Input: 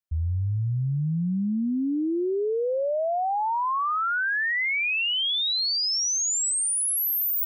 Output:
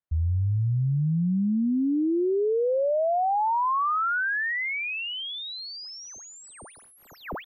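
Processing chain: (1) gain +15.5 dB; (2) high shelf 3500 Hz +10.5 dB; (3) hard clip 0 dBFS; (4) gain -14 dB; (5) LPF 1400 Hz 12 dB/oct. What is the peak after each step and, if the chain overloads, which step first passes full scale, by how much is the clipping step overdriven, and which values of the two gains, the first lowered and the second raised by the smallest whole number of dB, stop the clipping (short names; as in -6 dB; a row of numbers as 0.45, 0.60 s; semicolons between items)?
-7.0, +3.5, 0.0, -14.0, -20.5 dBFS; step 2, 3.5 dB; step 1 +11.5 dB, step 4 -10 dB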